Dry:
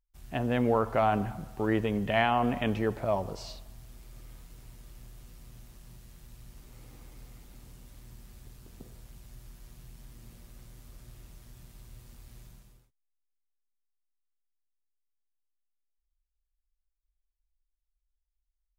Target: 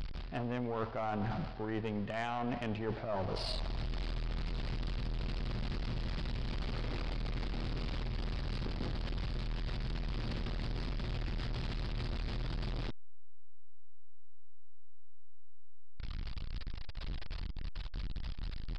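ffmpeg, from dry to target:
ffmpeg -i in.wav -af "aeval=exprs='val(0)+0.5*0.0133*sgn(val(0))':channel_layout=same,areverse,acompressor=threshold=-42dB:ratio=8,areverse,aresample=11025,aresample=44100,aeval=exprs='0.0251*(cos(1*acos(clip(val(0)/0.0251,-1,1)))-cos(1*PI/2))+0.00316*(cos(4*acos(clip(val(0)/0.0251,-1,1)))-cos(4*PI/2))':channel_layout=same,volume=7.5dB" out.wav

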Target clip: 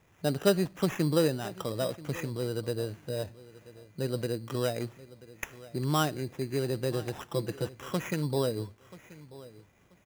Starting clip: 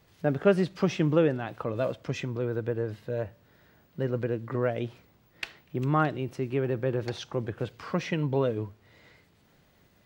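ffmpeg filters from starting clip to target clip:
ffmpeg -i in.wav -filter_complex "[0:a]asettb=1/sr,asplit=3[link_01][link_02][link_03];[link_01]atrim=end=7.254[link_04];[link_02]atrim=start=7.25:end=7.67,asetpts=PTS-STARTPTS,afade=type=in:duration=0.004:curve=qsin,afade=type=out:start_time=0.416:duration=0.004:curve=qsin,aecho=1:1:6:0.74,atrim=end_sample=18522[link_05];[link_03]atrim=start=7.666[link_06];[link_04][link_05]acrossfade=duration=0.004:curve1=hsin:curve2=qsin[link_07];[link_07][link_06]acrossfade=duration=0.004:curve1=qsin:curve2=hsin,acrusher=samples=10:mix=1:aa=0.000001,asplit=2[link_08][link_09];[link_09]aecho=0:1:984|1968:0.112|0.0236[link_10];[link_08][link_10]amix=inputs=2:normalize=0,volume=-2.5dB" out.wav

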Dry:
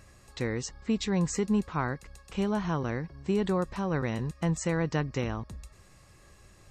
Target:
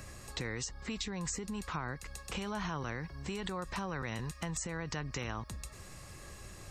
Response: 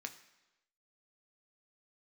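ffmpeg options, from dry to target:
-filter_complex "[0:a]alimiter=level_in=2dB:limit=-24dB:level=0:latency=1:release=45,volume=-2dB,highshelf=frequency=7200:gain=4.5,acrossover=split=84|850[link_01][link_02][link_03];[link_01]acompressor=threshold=-53dB:ratio=4[link_04];[link_02]acompressor=threshold=-48dB:ratio=4[link_05];[link_03]acompressor=threshold=-45dB:ratio=4[link_06];[link_04][link_05][link_06]amix=inputs=3:normalize=0,volume=6.5dB"

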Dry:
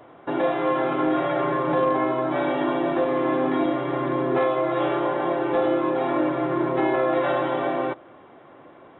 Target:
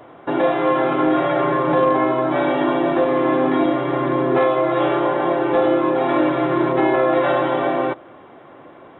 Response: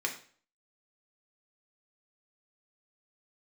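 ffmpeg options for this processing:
-filter_complex "[0:a]asettb=1/sr,asplit=3[link_01][link_02][link_03];[link_01]atrim=end=6.094[link_04];[link_02]atrim=start=6.09:end=6.73,asetpts=PTS-STARTPTS,afade=type=in:duration=0.004:curve=qsin,afade=type=out:start_time=0.636:duration=0.004:curve=qsin,highshelf=frequency=3400:gain=9.5[link_05];[link_03]atrim=start=6.726[link_06];[link_04][link_05]acrossfade=duration=0.004:curve1=hsin:curve2=qsin[link_07];[link_07][link_06]acrossfade=duration=0.004:curve1=qsin:curve2=hsin,volume=5dB"

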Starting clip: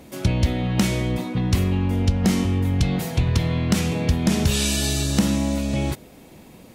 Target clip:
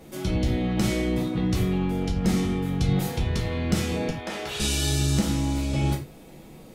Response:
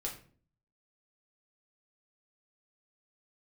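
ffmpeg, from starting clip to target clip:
-filter_complex "[0:a]asettb=1/sr,asplit=3[link_01][link_02][link_03];[link_01]atrim=end=4.094[link_04];[link_02]atrim=start=4.09:end=4.6,asetpts=PTS-STARTPTS,afade=type=in:duration=0.004:curve=qsin,afade=type=out:start_time=0.506:duration=0.004:curve=qsin,acrossover=split=450 3500:gain=0.0708 1 0.251[link_05][link_06][link_07];[link_05][link_06][link_07]amix=inputs=3:normalize=0[link_08];[link_03]atrim=start=4.596[link_09];[link_04][link_08]acrossfade=duration=0.004:curve1=hsin:curve2=qsin[link_10];[link_10][link_09]acrossfade=duration=0.004:curve1=qsin:curve2=hsin,alimiter=limit=-13dB:level=0:latency=1:release=116[link_11];[1:a]atrim=start_sample=2205,afade=type=out:start_time=0.16:duration=0.01,atrim=end_sample=7497[link_12];[link_11][link_12]afir=irnorm=-1:irlink=0,volume=-2dB"

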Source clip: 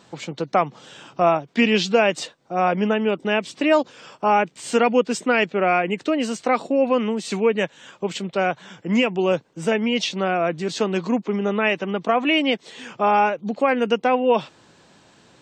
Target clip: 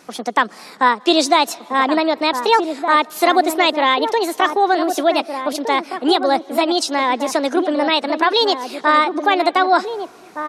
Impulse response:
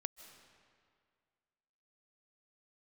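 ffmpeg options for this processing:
-filter_complex "[0:a]asetrate=64827,aresample=44100,asplit=2[link_01][link_02];[link_02]adelay=1516,volume=-7dB,highshelf=frequency=4000:gain=-34.1[link_03];[link_01][link_03]amix=inputs=2:normalize=0,asplit=2[link_04][link_05];[1:a]atrim=start_sample=2205[link_06];[link_05][link_06]afir=irnorm=-1:irlink=0,volume=-10dB[link_07];[link_04][link_07]amix=inputs=2:normalize=0,volume=2dB"

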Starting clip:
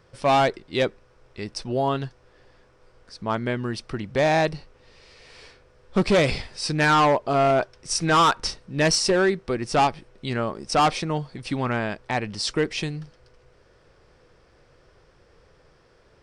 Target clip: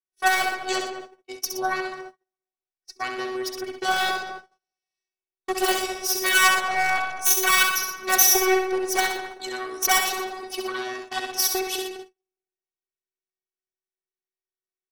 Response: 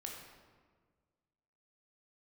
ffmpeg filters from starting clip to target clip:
-filter_complex "[0:a]afftfilt=real='hypot(re,im)*cos(PI*b)':imag='0':win_size=512:overlap=0.75,aeval=exprs='0.422*(cos(1*acos(clip(val(0)/0.422,-1,1)))-cos(1*PI/2))+0.168*(cos(4*acos(clip(val(0)/0.422,-1,1)))-cos(4*PI/2))':channel_layout=same,aemphasis=mode=production:type=bsi,asplit=2[link_01][link_02];[link_02]adelay=223,lowpass=frequency=1100:poles=1,volume=-8dB,asplit=2[link_03][link_04];[link_04]adelay=223,lowpass=frequency=1100:poles=1,volume=0.54,asplit=2[link_05][link_06];[link_06]adelay=223,lowpass=frequency=1100:poles=1,volume=0.54,asplit=2[link_07][link_08];[link_08]adelay=223,lowpass=frequency=1100:poles=1,volume=0.54,asplit=2[link_09][link_10];[link_10]adelay=223,lowpass=frequency=1100:poles=1,volume=0.54,asplit=2[link_11][link_12];[link_12]adelay=223,lowpass=frequency=1100:poles=1,volume=0.54[link_13];[link_03][link_05][link_07][link_09][link_11][link_13]amix=inputs=6:normalize=0[link_14];[link_01][link_14]amix=inputs=2:normalize=0,acontrast=52,asplit=2[link_15][link_16];[link_16]aecho=0:1:72|131:0.501|0.335[link_17];[link_15][link_17]amix=inputs=2:normalize=0,asetrate=48000,aresample=44100,agate=range=-44dB:threshold=-34dB:ratio=16:detection=peak,adynamicequalizer=threshold=0.0282:dfrequency=5300:dqfactor=0.7:tfrequency=5300:tqfactor=0.7:attack=5:release=100:ratio=0.375:range=2:mode=cutabove:tftype=highshelf,volume=-3dB"

